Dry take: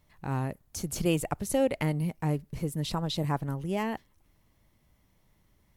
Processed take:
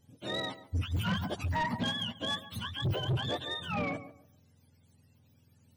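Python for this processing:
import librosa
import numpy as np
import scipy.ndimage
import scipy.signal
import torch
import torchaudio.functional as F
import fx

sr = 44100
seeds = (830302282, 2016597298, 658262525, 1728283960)

y = fx.octave_mirror(x, sr, pivot_hz=710.0)
y = fx.low_shelf(y, sr, hz=270.0, db=11.0)
y = fx.echo_tape(y, sr, ms=140, feedback_pct=28, wet_db=-13.0, lp_hz=1300.0, drive_db=16.0, wow_cents=25)
y = 10.0 ** (-25.5 / 20.0) * np.tanh(y / 10.0 ** (-25.5 / 20.0))
y = y * librosa.db_to_amplitude(-1.0)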